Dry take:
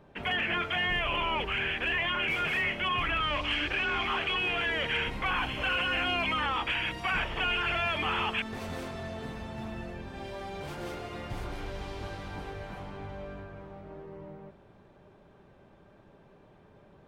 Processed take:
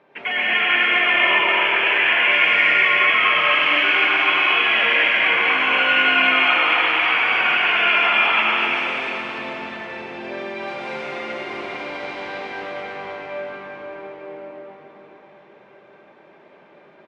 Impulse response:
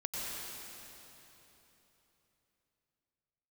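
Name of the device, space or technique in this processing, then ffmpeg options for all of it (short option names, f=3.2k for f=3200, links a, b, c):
station announcement: -filter_complex "[0:a]highpass=350,lowpass=4.2k,equalizer=f=2.2k:t=o:w=0.49:g=8,aecho=1:1:99.13|250.7:0.282|0.562[a];[1:a]atrim=start_sample=2205[b];[a][b]afir=irnorm=-1:irlink=0,volume=5.5dB"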